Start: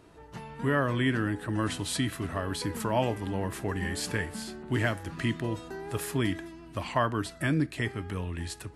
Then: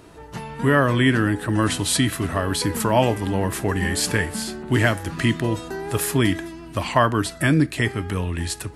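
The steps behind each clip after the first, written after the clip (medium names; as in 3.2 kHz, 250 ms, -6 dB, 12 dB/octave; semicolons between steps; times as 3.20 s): treble shelf 6.3 kHz +5 dB; trim +9 dB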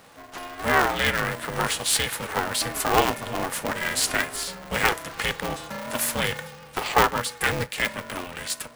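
high-pass 490 Hz 12 dB/octave; polarity switched at an audio rate 180 Hz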